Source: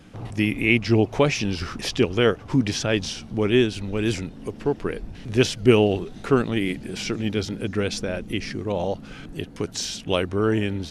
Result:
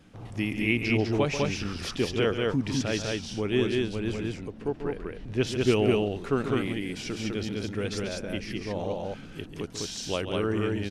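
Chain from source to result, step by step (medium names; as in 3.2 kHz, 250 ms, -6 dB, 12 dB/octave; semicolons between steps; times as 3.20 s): 3.75–5.47 s: treble shelf 4.2 kHz -9 dB; loudspeakers at several distances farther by 48 m -10 dB, 69 m -2 dB; trim -7.5 dB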